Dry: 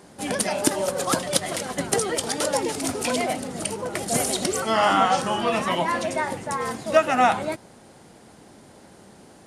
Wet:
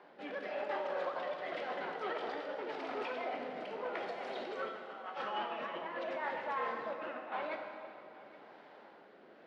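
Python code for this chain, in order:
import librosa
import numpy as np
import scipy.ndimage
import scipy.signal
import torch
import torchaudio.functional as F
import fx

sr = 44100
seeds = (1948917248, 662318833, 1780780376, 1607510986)

p1 = fx.over_compress(x, sr, threshold_db=-27.0, ratio=-0.5)
p2 = fx.rotary(p1, sr, hz=0.9)
p3 = 10.0 ** (-25.0 / 20.0) * np.tanh(p2 / 10.0 ** (-25.0 / 20.0))
p4 = fx.bandpass_edges(p3, sr, low_hz=590.0, high_hz=4300.0)
p5 = fx.air_absorb(p4, sr, metres=360.0)
p6 = p5 + fx.echo_single(p5, sr, ms=821, db=-19.5, dry=0)
p7 = fx.rev_plate(p6, sr, seeds[0], rt60_s=2.5, hf_ratio=0.8, predelay_ms=0, drr_db=3.0)
y = p7 * librosa.db_to_amplitude(-3.0)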